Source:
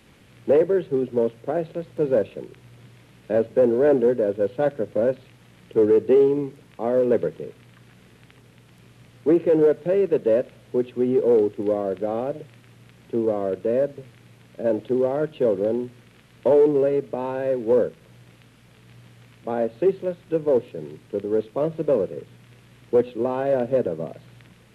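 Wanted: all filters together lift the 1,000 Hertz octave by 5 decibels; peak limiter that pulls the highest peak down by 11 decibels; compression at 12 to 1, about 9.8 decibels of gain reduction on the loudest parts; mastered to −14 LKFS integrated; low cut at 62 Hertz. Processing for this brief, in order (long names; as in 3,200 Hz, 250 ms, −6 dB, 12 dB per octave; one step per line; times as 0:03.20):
high-pass filter 62 Hz
parametric band 1,000 Hz +7 dB
downward compressor 12 to 1, threshold −22 dBFS
level +19 dB
brickwall limiter −4 dBFS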